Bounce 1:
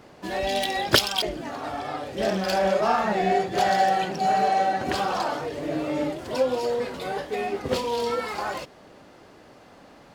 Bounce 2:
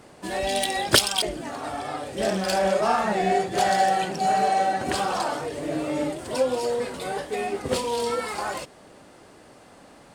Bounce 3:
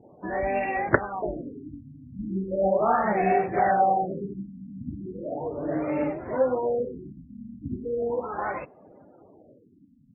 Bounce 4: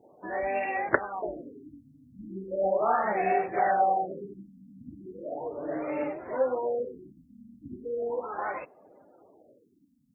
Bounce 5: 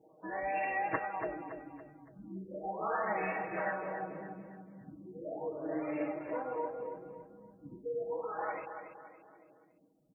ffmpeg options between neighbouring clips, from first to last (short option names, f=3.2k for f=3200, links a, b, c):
-af "equalizer=f=8.8k:t=o:w=0.49:g=13"
-af "afftdn=nr=29:nf=-46,afftfilt=real='re*lt(b*sr/1024,260*pow(2800/260,0.5+0.5*sin(2*PI*0.37*pts/sr)))':imag='im*lt(b*sr/1024,260*pow(2800/260,0.5+0.5*sin(2*PI*0.37*pts/sr)))':win_size=1024:overlap=0.75"
-af "bass=f=250:g=-12,treble=f=4k:g=9,volume=-2.5dB"
-filter_complex "[0:a]afftfilt=real='re*lt(hypot(re,im),0.398)':imag='im*lt(hypot(re,im),0.398)':win_size=1024:overlap=0.75,aecho=1:1:6.3:0.93,asplit=2[a][b];[b]aecho=0:1:282|564|846|1128:0.376|0.15|0.0601|0.0241[c];[a][c]amix=inputs=2:normalize=0,volume=-7.5dB"